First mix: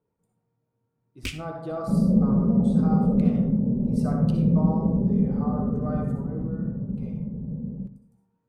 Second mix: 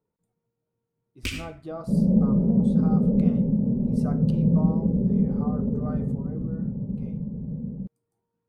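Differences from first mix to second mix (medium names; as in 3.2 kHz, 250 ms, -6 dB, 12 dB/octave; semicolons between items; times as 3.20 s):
speech: send off; first sound: send +11.5 dB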